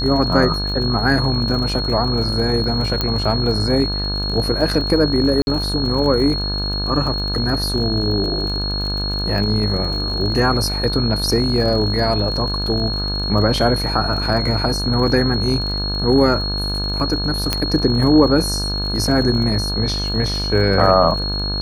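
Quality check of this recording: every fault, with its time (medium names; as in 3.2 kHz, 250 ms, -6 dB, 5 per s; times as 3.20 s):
buzz 50 Hz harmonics 34 -24 dBFS
crackle 38 per s -26 dBFS
whine 4.3 kHz -23 dBFS
3.01 s: pop -5 dBFS
5.42–5.47 s: dropout 51 ms
17.53 s: pop -2 dBFS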